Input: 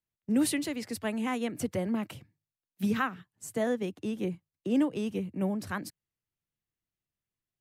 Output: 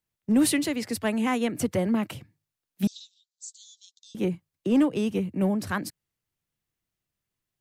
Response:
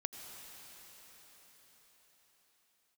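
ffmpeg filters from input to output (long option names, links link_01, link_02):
-filter_complex "[0:a]asplit=2[link_01][link_02];[link_02]asoftclip=type=hard:threshold=-25dB,volume=-4.5dB[link_03];[link_01][link_03]amix=inputs=2:normalize=0,asettb=1/sr,asplit=3[link_04][link_05][link_06];[link_04]atrim=end=2.874[link_07];[link_05]atrim=start=2.87:end=4.15,asetpts=PTS-STARTPTS,afade=type=in:duration=0.004:curve=qsin,afade=type=out:start_time=1.276:duration=0.004:curve=qsin,asuperpass=centerf=5300:order=12:qfactor=1.3[link_08];[link_06]atrim=start=4.146[link_09];[link_07][link_08]acrossfade=duration=0.004:curve1=hsin:curve2=qsin[link_10];[link_10][link_09]acrossfade=duration=0.004:curve1=qsin:curve2=hsin,volume=2dB"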